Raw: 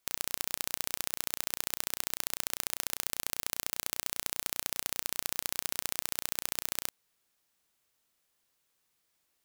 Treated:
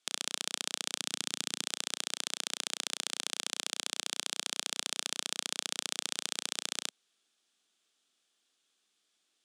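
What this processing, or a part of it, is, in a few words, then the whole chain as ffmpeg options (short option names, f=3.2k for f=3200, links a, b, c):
television speaker: -filter_complex "[0:a]highpass=f=210:w=0.5412,highpass=f=210:w=1.3066,equalizer=f=540:t=q:w=4:g=-6,equalizer=f=950:t=q:w=4:g=-9,equalizer=f=2k:t=q:w=4:g=-5,equalizer=f=3.4k:t=q:w=4:g=7,lowpass=f=9k:w=0.5412,lowpass=f=9k:w=1.3066,asplit=3[a][b][c];[a]afade=t=out:st=0.98:d=0.02[d];[b]asubboost=boost=8:cutoff=240,afade=t=in:st=0.98:d=0.02,afade=t=out:st=1.65:d=0.02[e];[c]afade=t=in:st=1.65:d=0.02[f];[d][e][f]amix=inputs=3:normalize=0,volume=2dB"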